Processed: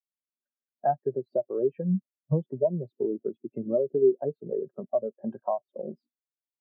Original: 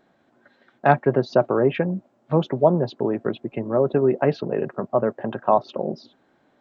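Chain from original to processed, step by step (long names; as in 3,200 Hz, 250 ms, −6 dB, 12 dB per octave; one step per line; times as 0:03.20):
downward compressor 6 to 1, threshold −26 dBFS, peak gain reduction 15 dB
every bin expanded away from the loudest bin 2.5 to 1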